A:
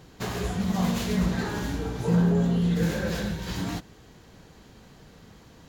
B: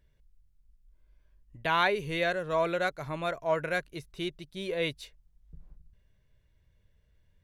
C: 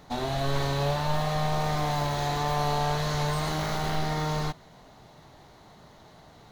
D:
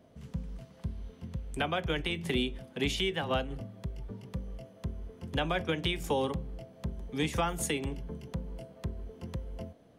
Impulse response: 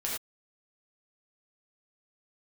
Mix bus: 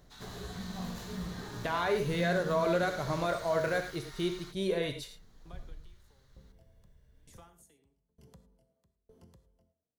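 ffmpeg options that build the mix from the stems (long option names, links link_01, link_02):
-filter_complex "[0:a]volume=-15.5dB,asplit=2[link_01][link_02];[link_02]volume=-11.5dB[link_03];[1:a]alimiter=level_in=0.5dB:limit=-24dB:level=0:latency=1:release=35,volume=-0.5dB,volume=0dB,asplit=3[link_04][link_05][link_06];[link_05]volume=-5.5dB[link_07];[2:a]highpass=frequency=1400:width=0.5412,highpass=frequency=1400:width=1.3066,volume=-10.5dB[link_08];[3:a]highshelf=frequency=4600:gain=7.5,acompressor=threshold=-42dB:ratio=3,aeval=exprs='val(0)*pow(10,-31*if(lt(mod(1.1*n/s,1),2*abs(1.1)/1000),1-mod(1.1*n/s,1)/(2*abs(1.1)/1000),(mod(1.1*n/s,1)-2*abs(1.1)/1000)/(1-2*abs(1.1)/1000))/20)':channel_layout=same,volume=-10dB,asplit=2[link_09][link_10];[link_10]volume=-11.5dB[link_11];[link_06]apad=whole_len=250770[link_12];[link_01][link_12]sidechaincompress=threshold=-37dB:ratio=8:attack=16:release=1180[link_13];[4:a]atrim=start_sample=2205[link_14];[link_03][link_07][link_11]amix=inputs=3:normalize=0[link_15];[link_15][link_14]afir=irnorm=-1:irlink=0[link_16];[link_13][link_04][link_08][link_09][link_16]amix=inputs=5:normalize=0,equalizer=frequency=2500:width_type=o:width=0.89:gain=-7.5"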